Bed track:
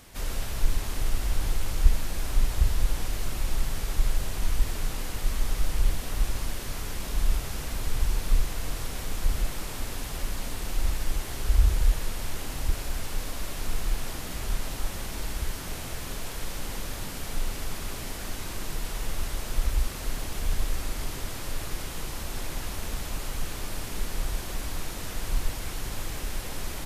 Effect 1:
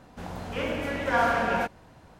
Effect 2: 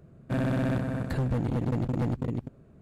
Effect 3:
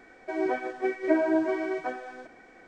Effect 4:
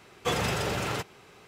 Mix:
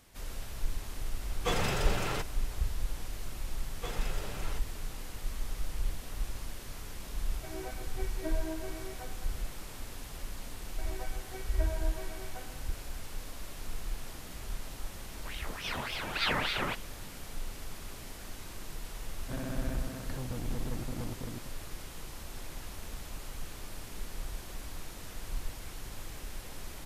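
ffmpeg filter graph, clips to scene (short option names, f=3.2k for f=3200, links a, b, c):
-filter_complex "[4:a]asplit=2[a][b];[3:a]asplit=2[c][d];[0:a]volume=-9.5dB[e];[d]highpass=450[f];[1:a]aeval=exprs='val(0)*sin(2*PI*1700*n/s+1700*0.8/3.5*sin(2*PI*3.5*n/s))':c=same[g];[2:a]equalizer=f=160:t=o:w=0.77:g=-4[h];[a]atrim=end=1.47,asetpts=PTS-STARTPTS,volume=-3.5dB,afade=t=in:d=0.004:c=hsin,afade=t=out:st=1.466:d=0.004:c=hsin,adelay=1200[i];[b]atrim=end=1.47,asetpts=PTS-STARTPTS,volume=-13.5dB,afade=t=in:d=0.004:c=hsin,afade=t=out:st=1.466:d=0.004:c=hsin,adelay=157437S[j];[c]atrim=end=2.67,asetpts=PTS-STARTPTS,volume=-15dB,afade=t=in:d=0.004:c=hsin,afade=t=out:st=2.666:d=0.004:c=hsin,adelay=7150[k];[f]atrim=end=2.67,asetpts=PTS-STARTPTS,volume=-14.5dB,afade=t=in:d=0.004:c=hsin,afade=t=out:st=2.666:d=0.004:c=hsin,adelay=463050S[l];[g]atrim=end=2.19,asetpts=PTS-STARTPTS,volume=-4.5dB,afade=t=in:d=0.004:c=hsin,afade=t=out:st=2.186:d=0.004:c=hsin,adelay=665028S[m];[h]atrim=end=2.81,asetpts=PTS-STARTPTS,volume=-10dB,afade=t=in:d=0.004:c=hsin,afade=t=out:st=2.806:d=0.004:c=hsin,adelay=18990[n];[e][i][j][k][l][m][n]amix=inputs=7:normalize=0"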